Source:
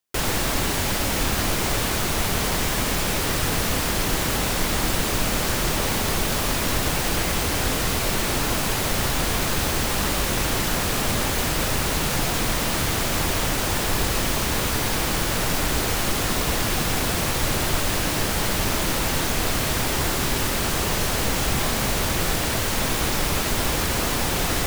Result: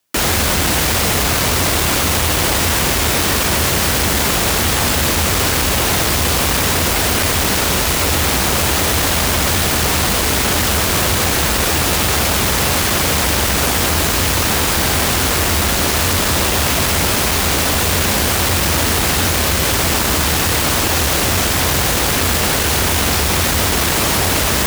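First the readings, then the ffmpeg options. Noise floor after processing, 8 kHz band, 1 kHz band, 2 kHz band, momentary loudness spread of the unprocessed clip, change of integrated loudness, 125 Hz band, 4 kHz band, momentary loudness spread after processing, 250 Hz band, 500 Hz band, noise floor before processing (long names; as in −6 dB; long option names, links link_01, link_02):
−16 dBFS, +9.0 dB, +7.5 dB, +8.5 dB, 0 LU, +8.5 dB, +7.5 dB, +9.0 dB, 0 LU, +6.0 dB, +7.0 dB, −24 dBFS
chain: -af "afreqshift=-92,aeval=exprs='0.376*sin(PI/2*3.98*val(0)/0.376)':channel_layout=same,highpass=57,volume=-3dB"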